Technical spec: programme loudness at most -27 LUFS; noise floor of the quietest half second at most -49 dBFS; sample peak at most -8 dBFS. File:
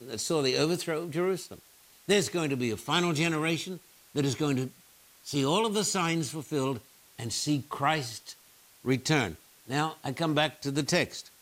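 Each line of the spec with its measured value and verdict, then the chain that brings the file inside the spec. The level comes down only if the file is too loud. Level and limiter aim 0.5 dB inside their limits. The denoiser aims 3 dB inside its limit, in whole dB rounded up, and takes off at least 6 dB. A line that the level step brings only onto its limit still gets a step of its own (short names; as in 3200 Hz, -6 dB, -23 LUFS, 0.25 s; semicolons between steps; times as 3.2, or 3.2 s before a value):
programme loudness -29.5 LUFS: OK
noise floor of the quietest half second -58 dBFS: OK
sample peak -12.0 dBFS: OK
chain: none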